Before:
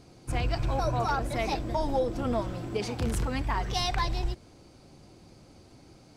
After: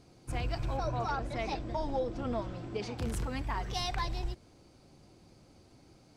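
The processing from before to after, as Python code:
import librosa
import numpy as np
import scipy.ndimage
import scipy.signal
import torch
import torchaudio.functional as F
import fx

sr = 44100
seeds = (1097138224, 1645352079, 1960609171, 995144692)

y = fx.lowpass(x, sr, hz=6300.0, slope=12, at=(0.77, 2.98))
y = y * librosa.db_to_amplitude(-5.5)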